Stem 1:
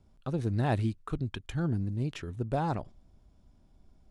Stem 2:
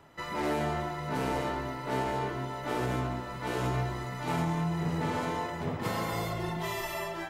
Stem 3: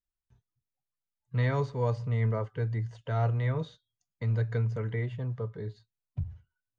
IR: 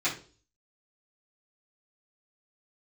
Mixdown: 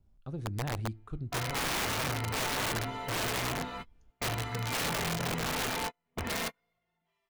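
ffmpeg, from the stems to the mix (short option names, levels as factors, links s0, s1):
-filter_complex "[0:a]lowshelf=f=130:g=9.5,volume=0.299,asplit=2[s0][s1];[s1]volume=0.0794[s2];[1:a]equalizer=f=2400:t=o:w=1.4:g=9.5,aecho=1:1:4.3:0.64,adelay=450,volume=0.631[s3];[2:a]acompressor=threshold=0.0251:ratio=12,volume=0.891,asplit=2[s4][s5];[s5]apad=whole_len=341860[s6];[s3][s6]sidechaingate=range=0.00501:threshold=0.001:ratio=16:detection=peak[s7];[3:a]atrim=start_sample=2205[s8];[s2][s8]afir=irnorm=-1:irlink=0[s9];[s0][s7][s4][s9]amix=inputs=4:normalize=0,highshelf=f=3500:g=-3,aeval=exprs='(mod(21.1*val(0)+1,2)-1)/21.1':c=same"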